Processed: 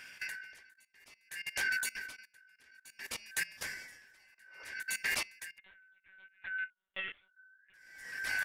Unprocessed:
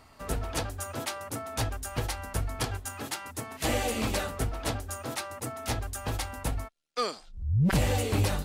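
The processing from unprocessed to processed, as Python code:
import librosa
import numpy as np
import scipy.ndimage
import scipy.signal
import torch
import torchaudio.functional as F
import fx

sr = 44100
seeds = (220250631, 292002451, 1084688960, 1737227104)

y = fx.band_shuffle(x, sr, order='3142')
y = fx.recorder_agc(y, sr, target_db=-22.0, rise_db_per_s=6.0, max_gain_db=30)
y = fx.spec_repair(y, sr, seeds[0], start_s=4.35, length_s=0.27, low_hz=320.0, high_hz=1500.0, source='both')
y = fx.level_steps(y, sr, step_db=19)
y = fx.lpc_monotone(y, sr, seeds[1], pitch_hz=190.0, order=16, at=(5.58, 7.74))
y = y * 10.0 ** (-32 * (0.5 - 0.5 * np.cos(2.0 * np.pi * 0.59 * np.arange(len(y)) / sr)) / 20.0)
y = y * 10.0 ** (6.0 / 20.0)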